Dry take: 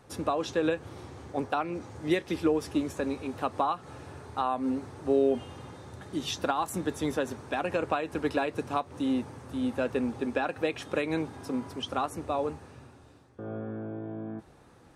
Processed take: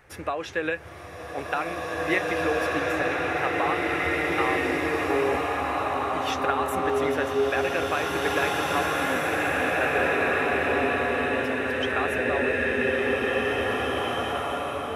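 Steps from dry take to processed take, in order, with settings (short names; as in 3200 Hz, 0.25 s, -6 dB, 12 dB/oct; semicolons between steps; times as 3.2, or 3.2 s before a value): graphic EQ 125/250/500/1000/2000/4000/8000 Hz -8/-12/-3/-7/+9/-8/-8 dB; spectral freeze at 9.99, 1.44 s; bloom reverb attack 2.41 s, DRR -6 dB; gain +5.5 dB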